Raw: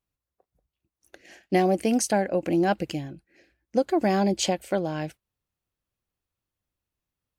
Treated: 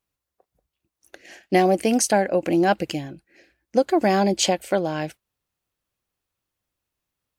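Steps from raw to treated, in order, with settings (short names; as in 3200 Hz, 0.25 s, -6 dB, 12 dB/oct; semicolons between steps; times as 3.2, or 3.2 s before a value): low shelf 240 Hz -6.5 dB; gain +5.5 dB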